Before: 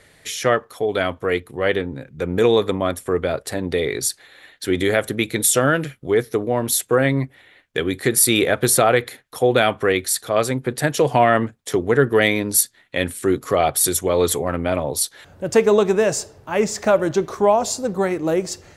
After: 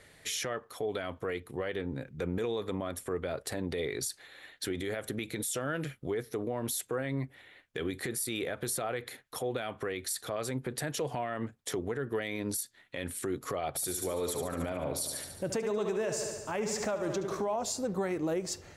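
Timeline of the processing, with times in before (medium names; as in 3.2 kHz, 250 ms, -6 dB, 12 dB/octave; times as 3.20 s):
13.68–17.56 s: feedback delay 72 ms, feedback 60%, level -9.5 dB
whole clip: compression, threshold -21 dBFS; peak limiter -18.5 dBFS; trim -5.5 dB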